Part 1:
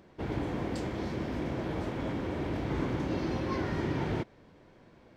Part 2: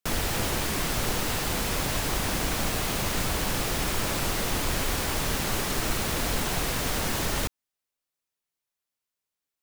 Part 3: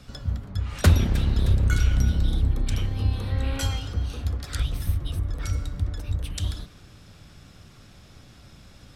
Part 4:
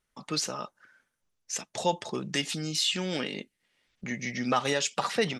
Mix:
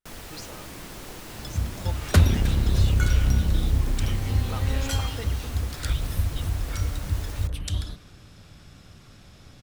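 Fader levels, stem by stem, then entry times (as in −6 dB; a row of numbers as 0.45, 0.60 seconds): −13.5, −13.0, 0.0, −12.5 decibels; 0.30, 0.00, 1.30, 0.00 seconds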